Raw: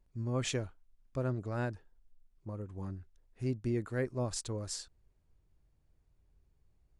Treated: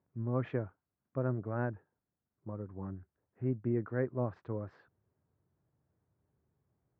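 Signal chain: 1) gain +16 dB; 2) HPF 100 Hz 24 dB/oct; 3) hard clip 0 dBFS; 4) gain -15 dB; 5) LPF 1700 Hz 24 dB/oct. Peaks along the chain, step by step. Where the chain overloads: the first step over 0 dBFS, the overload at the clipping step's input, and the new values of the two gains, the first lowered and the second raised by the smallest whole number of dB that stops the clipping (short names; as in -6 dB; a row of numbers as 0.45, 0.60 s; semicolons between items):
-4.5, -4.0, -4.0, -19.0, -19.5 dBFS; no overload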